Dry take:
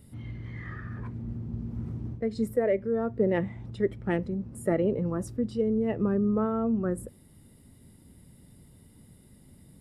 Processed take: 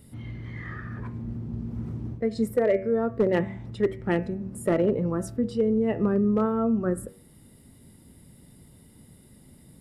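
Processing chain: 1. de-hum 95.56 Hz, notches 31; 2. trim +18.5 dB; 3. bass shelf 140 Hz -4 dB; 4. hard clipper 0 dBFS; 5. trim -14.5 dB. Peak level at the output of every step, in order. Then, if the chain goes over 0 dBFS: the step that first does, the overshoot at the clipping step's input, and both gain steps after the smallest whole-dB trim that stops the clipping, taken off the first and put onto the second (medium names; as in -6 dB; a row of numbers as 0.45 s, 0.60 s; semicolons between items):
-14.0 dBFS, +4.5 dBFS, +4.0 dBFS, 0.0 dBFS, -14.5 dBFS; step 2, 4.0 dB; step 2 +14.5 dB, step 5 -10.5 dB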